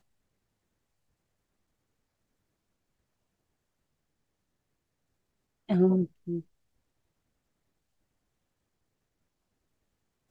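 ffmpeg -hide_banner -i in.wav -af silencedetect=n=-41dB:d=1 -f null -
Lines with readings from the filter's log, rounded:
silence_start: 0.00
silence_end: 5.69 | silence_duration: 5.69
silence_start: 6.41
silence_end: 10.31 | silence_duration: 3.90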